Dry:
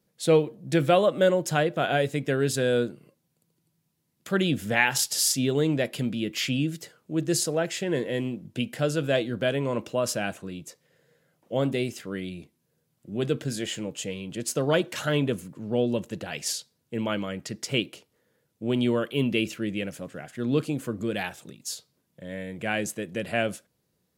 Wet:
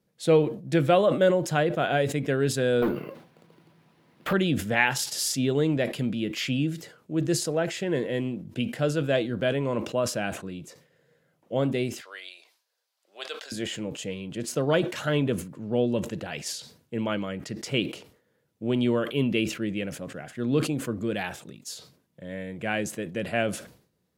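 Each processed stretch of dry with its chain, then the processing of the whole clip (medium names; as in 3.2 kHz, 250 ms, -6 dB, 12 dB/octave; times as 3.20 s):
2.82–4.33 s: low-pass 5.5 kHz + overdrive pedal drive 32 dB, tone 1.5 kHz, clips at -15.5 dBFS + careless resampling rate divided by 3×, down none, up hold
12.01–13.52 s: high-pass 680 Hz 24 dB/octave + peaking EQ 4.6 kHz +9 dB 0.96 oct
whole clip: treble shelf 4.6 kHz -6.5 dB; decay stretcher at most 110 dB/s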